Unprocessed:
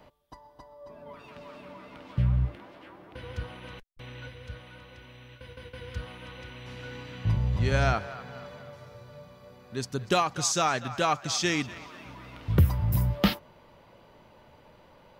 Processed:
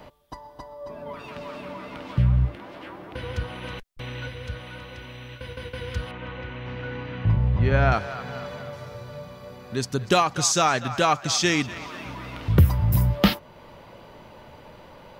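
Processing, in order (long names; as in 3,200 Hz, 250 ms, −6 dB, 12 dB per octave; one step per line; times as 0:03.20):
0:06.11–0:07.92: low-pass filter 2,300 Hz 12 dB per octave
in parallel at −1.5 dB: downward compressor, threshold −40 dBFS, peak gain reduction 22.5 dB
on the sum: level +4 dB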